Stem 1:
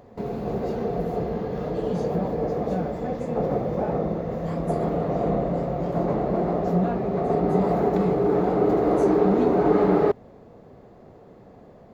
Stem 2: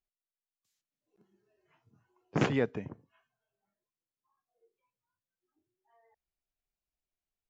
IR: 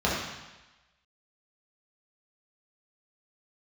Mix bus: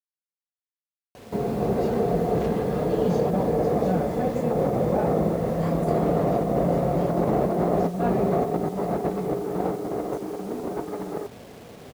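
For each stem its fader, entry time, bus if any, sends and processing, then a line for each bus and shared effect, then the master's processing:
+1.5 dB, 1.15 s, no send, HPF 54 Hz 12 dB/oct
-5.5 dB, 0.00 s, no send, soft clip -33 dBFS, distortion -5 dB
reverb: off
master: vibrato 8.7 Hz 10 cents; negative-ratio compressor -23 dBFS, ratio -0.5; bit-crush 8-bit

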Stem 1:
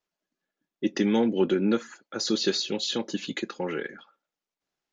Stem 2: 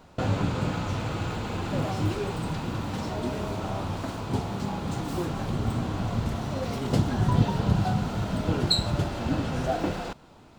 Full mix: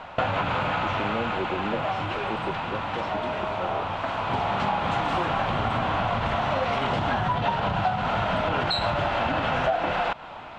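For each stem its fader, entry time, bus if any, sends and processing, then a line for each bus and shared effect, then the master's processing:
-8.0 dB, 0.00 s, no send, steep low-pass 680 Hz 96 dB/oct
+3.0 dB, 0.00 s, no send, limiter -18.5 dBFS, peak gain reduction 10 dB; auto duck -9 dB, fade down 1.55 s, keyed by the first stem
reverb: off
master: LPF 5800 Hz 12 dB/oct; band shelf 1400 Hz +14.5 dB 2.9 oct; compressor 5:1, threshold -22 dBFS, peak gain reduction 12 dB

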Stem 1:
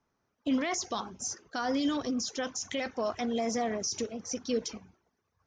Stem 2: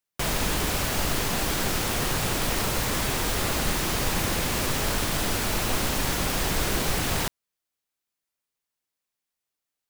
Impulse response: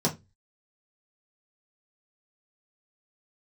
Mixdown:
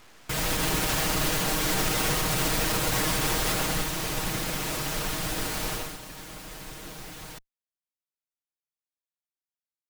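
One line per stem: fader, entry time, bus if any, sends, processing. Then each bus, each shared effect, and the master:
-16.5 dB, 0.00 s, no send, infinite clipping; weighting filter A; full-wave rectifier
3.46 s -2 dB -> 3.89 s -8.5 dB -> 5.73 s -8.5 dB -> 5.99 s -20 dB, 0.10 s, no send, minimum comb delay 6.4 ms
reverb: off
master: AGC gain up to 6 dB; limiter -16 dBFS, peak gain reduction 5 dB

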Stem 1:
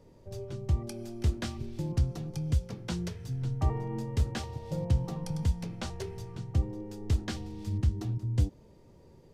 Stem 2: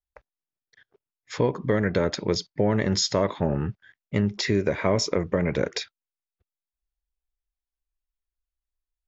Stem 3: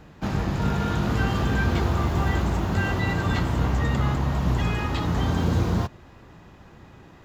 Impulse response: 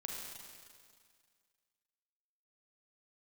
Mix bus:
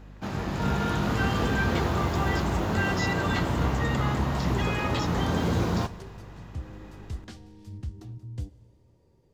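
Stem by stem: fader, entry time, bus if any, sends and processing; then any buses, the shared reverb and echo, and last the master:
-9.5 dB, 0.00 s, send -14 dB, dry
-14.0 dB, 0.00 s, no send, dry
-5.5 dB, 0.00 s, send -12.5 dB, low shelf 130 Hz -8 dB; AGC gain up to 4.5 dB; hum 50 Hz, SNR 19 dB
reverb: on, RT60 2.0 s, pre-delay 34 ms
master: dry

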